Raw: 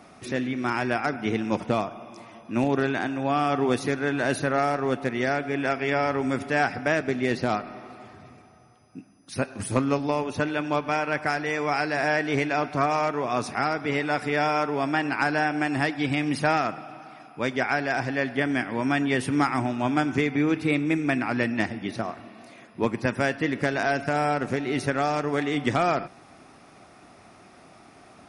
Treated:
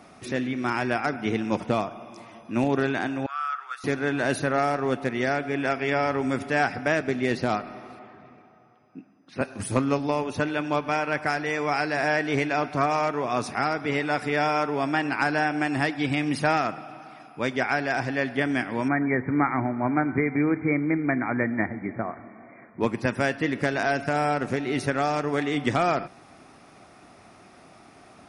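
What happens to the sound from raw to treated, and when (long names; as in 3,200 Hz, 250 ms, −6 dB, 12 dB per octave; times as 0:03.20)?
0:03.26–0:03.84: four-pole ladder high-pass 1,300 Hz, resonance 85%
0:07.99–0:09.41: band-pass filter 170–2,600 Hz
0:18.88–0:22.81: linear-phase brick-wall low-pass 2,400 Hz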